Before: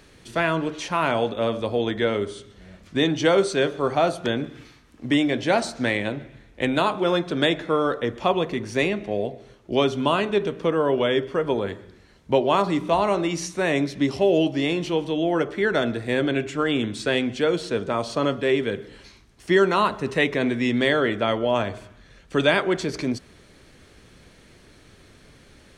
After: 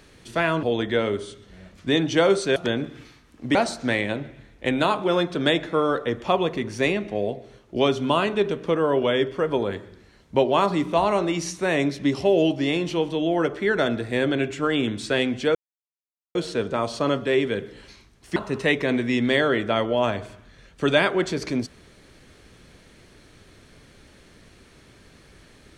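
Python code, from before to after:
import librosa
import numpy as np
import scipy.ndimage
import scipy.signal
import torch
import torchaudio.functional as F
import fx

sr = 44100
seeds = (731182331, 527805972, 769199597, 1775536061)

y = fx.edit(x, sr, fx.cut(start_s=0.63, length_s=1.08),
    fx.cut(start_s=3.64, length_s=0.52),
    fx.cut(start_s=5.15, length_s=0.36),
    fx.insert_silence(at_s=17.51, length_s=0.8),
    fx.cut(start_s=19.52, length_s=0.36), tone=tone)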